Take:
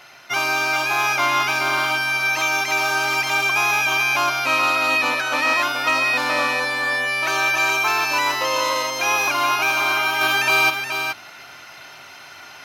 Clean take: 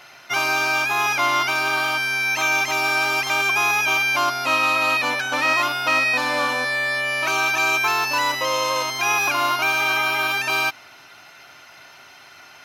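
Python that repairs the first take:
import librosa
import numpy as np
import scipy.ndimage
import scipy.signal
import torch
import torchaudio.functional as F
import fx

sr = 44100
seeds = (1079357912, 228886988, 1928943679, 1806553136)

y = fx.fix_declip(x, sr, threshold_db=-10.0)
y = fx.fix_echo_inverse(y, sr, delay_ms=424, level_db=-7.0)
y = fx.gain(y, sr, db=fx.steps((0.0, 0.0), (10.21, -4.0)))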